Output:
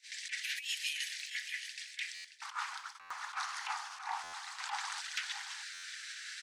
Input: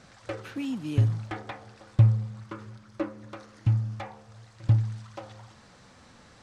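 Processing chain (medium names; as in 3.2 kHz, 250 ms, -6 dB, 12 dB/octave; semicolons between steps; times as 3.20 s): steep high-pass 1.8 kHz 72 dB/octave, from 2.40 s 800 Hz, from 5.00 s 1.5 kHz; gate -60 dBFS, range -24 dB; compressor with a negative ratio -50 dBFS, ratio -0.5; delay 626 ms -11 dB; buffer glitch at 2.14/3.00/4.23/5.73 s, samples 512, times 8; trim +12.5 dB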